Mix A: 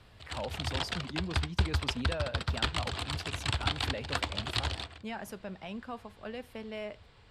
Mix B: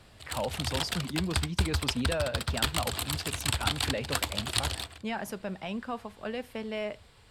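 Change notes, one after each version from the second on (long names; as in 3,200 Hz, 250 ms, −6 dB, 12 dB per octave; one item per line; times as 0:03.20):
speech +5.5 dB
background: remove high-frequency loss of the air 110 metres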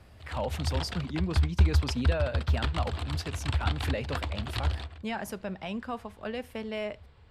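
background: add head-to-tape spacing loss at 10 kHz 24 dB
master: add parametric band 73 Hz +10 dB 0.53 octaves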